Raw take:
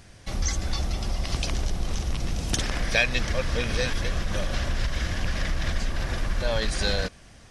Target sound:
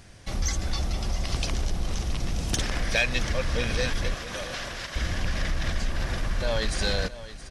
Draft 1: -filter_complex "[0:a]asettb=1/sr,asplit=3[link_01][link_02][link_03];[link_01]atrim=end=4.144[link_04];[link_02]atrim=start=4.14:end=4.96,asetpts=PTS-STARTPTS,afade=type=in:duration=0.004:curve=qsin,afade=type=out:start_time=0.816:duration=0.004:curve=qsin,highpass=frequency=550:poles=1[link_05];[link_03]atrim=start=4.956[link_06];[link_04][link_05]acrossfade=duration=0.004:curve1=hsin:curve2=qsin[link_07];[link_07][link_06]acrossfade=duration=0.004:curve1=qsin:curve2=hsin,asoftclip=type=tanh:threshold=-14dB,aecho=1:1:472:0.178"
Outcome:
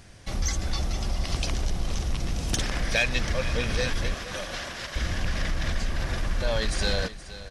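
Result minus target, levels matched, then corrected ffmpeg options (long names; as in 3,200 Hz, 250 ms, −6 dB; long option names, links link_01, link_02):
echo 199 ms early
-filter_complex "[0:a]asettb=1/sr,asplit=3[link_01][link_02][link_03];[link_01]atrim=end=4.144[link_04];[link_02]atrim=start=4.14:end=4.96,asetpts=PTS-STARTPTS,afade=type=in:duration=0.004:curve=qsin,afade=type=out:start_time=0.816:duration=0.004:curve=qsin,highpass=frequency=550:poles=1[link_05];[link_03]atrim=start=4.956[link_06];[link_04][link_05]acrossfade=duration=0.004:curve1=hsin:curve2=qsin[link_07];[link_07][link_06]acrossfade=duration=0.004:curve1=qsin:curve2=hsin,asoftclip=type=tanh:threshold=-14dB,aecho=1:1:671:0.178"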